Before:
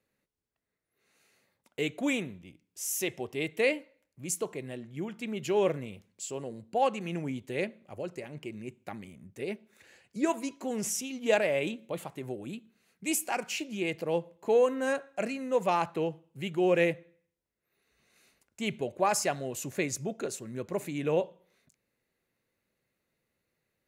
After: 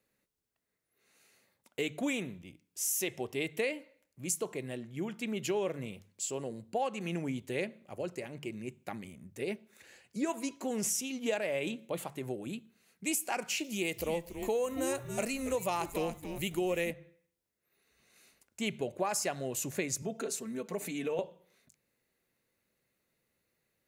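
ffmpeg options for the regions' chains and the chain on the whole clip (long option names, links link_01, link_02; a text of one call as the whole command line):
ffmpeg -i in.wav -filter_complex "[0:a]asettb=1/sr,asplit=3[link_01][link_02][link_03];[link_01]atrim=end=13.644[link_04];[link_02]atrim=start=13.64:end=16.91,asetpts=PTS-STARTPTS,afade=type=in:duration=0.004:curve=qsin,afade=type=out:start_time=3.266:duration=0.004:curve=qsin,aemphasis=mode=production:type=50fm,bandreject=frequency=1600:width=11,asplit=4[link_05][link_06][link_07][link_08];[link_06]adelay=280,afreqshift=-140,volume=-11dB[link_09];[link_07]adelay=560,afreqshift=-280,volume=-20.9dB[link_10];[link_08]adelay=840,afreqshift=-420,volume=-30.8dB[link_11];[link_05][link_09][link_10][link_11]amix=inputs=4:normalize=0,atrim=end_sample=144207[link_12];[link_03]atrim=start=16.906[link_13];[link_04][link_12]acrossfade=duration=0.004:curve1=hsin:curve2=qsin[link_14];[link_14][link_13]acrossfade=duration=0.004:curve1=qsin:curve2=hsin,asettb=1/sr,asplit=3[link_15][link_16][link_17];[link_15]atrim=end=20.024[link_18];[link_16]atrim=start=20.02:end=21.19,asetpts=PTS-STARTPTS,afade=type=in:duration=0.004:curve=qsin,afade=type=out:start_time=1.166:duration=0.004:curve=qsin,highpass=160,aecho=1:1:4.5:0.72,atrim=end_sample=51597,acompressor=threshold=-35dB:ratio=2:attack=3.2:release=140:knee=1:detection=peak[link_19];[link_17]atrim=start=21.186[link_20];[link_18][link_19]acrossfade=duration=0.004:curve1=hsin:curve2=qsin[link_21];[link_21][link_20]acrossfade=duration=0.004:curve1=qsin:curve2=hsin,highshelf=frequency=5300:gain=5,bandreject=frequency=50:width_type=h:width=6,bandreject=frequency=100:width_type=h:width=6,bandreject=frequency=150:width_type=h:width=6,acompressor=threshold=-29dB:ratio=6" out.wav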